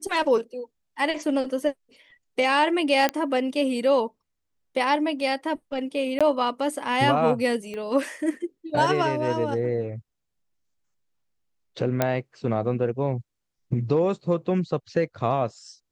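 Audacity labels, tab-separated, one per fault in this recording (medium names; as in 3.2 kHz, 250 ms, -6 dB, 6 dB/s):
3.090000	3.090000	pop -9 dBFS
6.190000	6.210000	dropout 16 ms
7.740000	7.740000	pop -24 dBFS
12.020000	12.020000	pop -7 dBFS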